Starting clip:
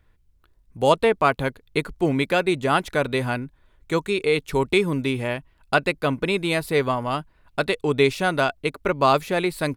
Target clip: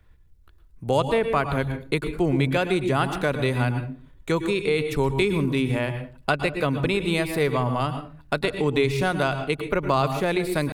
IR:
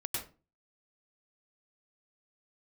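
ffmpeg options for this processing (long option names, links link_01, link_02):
-filter_complex "[0:a]asplit=2[link_01][link_02];[1:a]atrim=start_sample=2205,lowshelf=frequency=260:gain=9.5,highshelf=frequency=9600:gain=2.5[link_03];[link_02][link_03]afir=irnorm=-1:irlink=0,volume=-10dB[link_04];[link_01][link_04]amix=inputs=2:normalize=0,atempo=0.91,acrossover=split=130[link_05][link_06];[link_06]acompressor=threshold=-23dB:ratio=2[link_07];[link_05][link_07]amix=inputs=2:normalize=0"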